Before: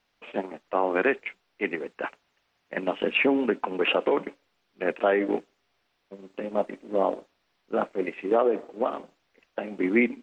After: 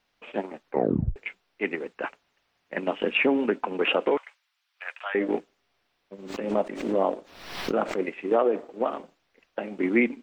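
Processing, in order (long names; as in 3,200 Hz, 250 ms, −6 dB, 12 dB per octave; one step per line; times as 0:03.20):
0:00.63: tape stop 0.53 s
0:04.17–0:05.15: Bessel high-pass filter 1,400 Hz, order 6
0:06.18–0:07.99: background raised ahead of every attack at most 64 dB per second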